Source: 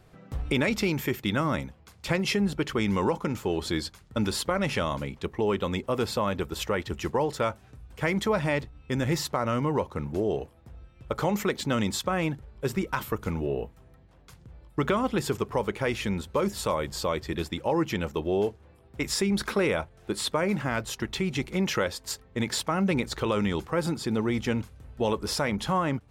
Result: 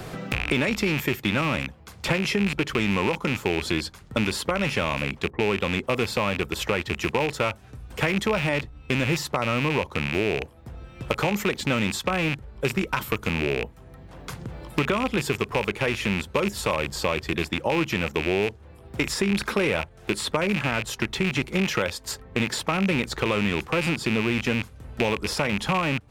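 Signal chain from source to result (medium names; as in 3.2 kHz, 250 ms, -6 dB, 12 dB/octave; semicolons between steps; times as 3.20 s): rattle on loud lows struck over -34 dBFS, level -18 dBFS; 5.30–5.87 s: level-controlled noise filter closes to 720 Hz, open at -25.5 dBFS; three bands compressed up and down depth 70%; trim +1.5 dB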